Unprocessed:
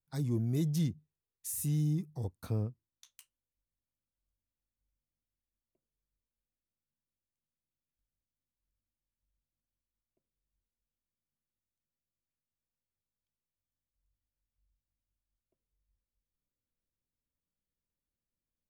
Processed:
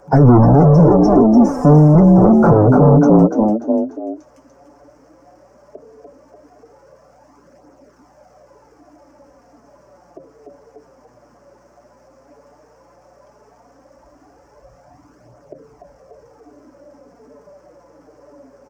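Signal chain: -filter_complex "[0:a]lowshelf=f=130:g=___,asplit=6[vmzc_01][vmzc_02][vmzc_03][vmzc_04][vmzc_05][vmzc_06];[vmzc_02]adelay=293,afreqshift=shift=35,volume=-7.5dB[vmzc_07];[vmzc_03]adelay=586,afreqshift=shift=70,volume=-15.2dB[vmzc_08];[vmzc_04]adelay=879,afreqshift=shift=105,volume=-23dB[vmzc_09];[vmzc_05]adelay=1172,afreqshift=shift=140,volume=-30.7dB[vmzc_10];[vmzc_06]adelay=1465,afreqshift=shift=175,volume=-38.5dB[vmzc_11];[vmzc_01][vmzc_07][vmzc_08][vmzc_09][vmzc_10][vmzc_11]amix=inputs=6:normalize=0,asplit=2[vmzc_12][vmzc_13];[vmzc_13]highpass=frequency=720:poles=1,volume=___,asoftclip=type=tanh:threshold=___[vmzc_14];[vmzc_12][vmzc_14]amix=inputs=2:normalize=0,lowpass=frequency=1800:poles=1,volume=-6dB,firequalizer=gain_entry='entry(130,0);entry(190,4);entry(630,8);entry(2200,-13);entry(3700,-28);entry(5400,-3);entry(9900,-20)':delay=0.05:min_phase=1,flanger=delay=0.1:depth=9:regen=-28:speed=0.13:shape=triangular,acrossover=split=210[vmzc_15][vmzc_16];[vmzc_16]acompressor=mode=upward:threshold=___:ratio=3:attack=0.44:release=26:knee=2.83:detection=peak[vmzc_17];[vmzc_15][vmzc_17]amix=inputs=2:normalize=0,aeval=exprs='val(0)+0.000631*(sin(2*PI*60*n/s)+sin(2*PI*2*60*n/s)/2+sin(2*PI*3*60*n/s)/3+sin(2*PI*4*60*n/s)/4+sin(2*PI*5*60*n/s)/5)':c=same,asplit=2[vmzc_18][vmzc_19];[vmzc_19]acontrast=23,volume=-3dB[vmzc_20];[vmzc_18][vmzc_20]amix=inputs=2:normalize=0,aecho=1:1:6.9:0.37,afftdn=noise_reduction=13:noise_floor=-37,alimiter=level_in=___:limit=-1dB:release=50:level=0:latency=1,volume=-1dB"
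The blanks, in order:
6.5, 38dB, -17dB, -44dB, 12dB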